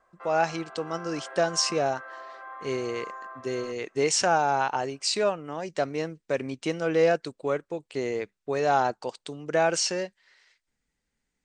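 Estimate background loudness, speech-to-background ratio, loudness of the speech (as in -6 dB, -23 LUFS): -42.0 LUFS, 14.5 dB, -27.5 LUFS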